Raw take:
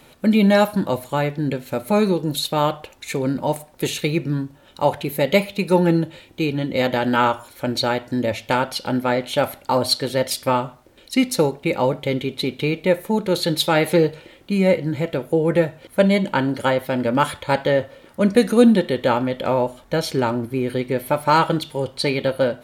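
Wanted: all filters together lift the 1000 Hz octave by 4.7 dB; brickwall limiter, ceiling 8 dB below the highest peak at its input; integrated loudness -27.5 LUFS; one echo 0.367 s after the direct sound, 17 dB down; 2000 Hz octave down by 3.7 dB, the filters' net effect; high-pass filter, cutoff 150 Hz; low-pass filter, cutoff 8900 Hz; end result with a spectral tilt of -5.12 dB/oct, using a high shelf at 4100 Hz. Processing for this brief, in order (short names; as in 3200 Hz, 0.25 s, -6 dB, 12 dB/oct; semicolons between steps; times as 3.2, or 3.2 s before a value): HPF 150 Hz; LPF 8900 Hz; bell 1000 Hz +7.5 dB; bell 2000 Hz -7 dB; high shelf 4100 Hz -5 dB; limiter -8.5 dBFS; echo 0.367 s -17 dB; gain -6 dB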